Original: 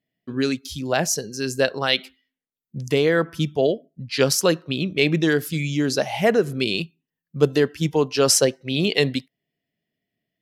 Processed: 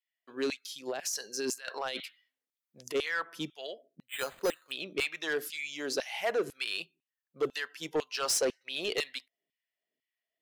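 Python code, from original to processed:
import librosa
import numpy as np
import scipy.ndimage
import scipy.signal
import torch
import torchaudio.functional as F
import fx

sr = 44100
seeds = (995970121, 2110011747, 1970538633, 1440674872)

y = fx.over_compress(x, sr, threshold_db=-27.0, ratio=-1.0, at=(0.86, 2.94), fade=0.02)
y = fx.filter_lfo_highpass(y, sr, shape='saw_down', hz=2.0, low_hz=290.0, high_hz=2700.0, q=1.3)
y = 10.0 ** (-16.0 / 20.0) * np.tanh(y / 10.0 ** (-16.0 / 20.0))
y = fx.resample_bad(y, sr, factor=8, down='filtered', up='hold', at=(4.08, 4.72))
y = F.gain(torch.from_numpy(y), -7.5).numpy()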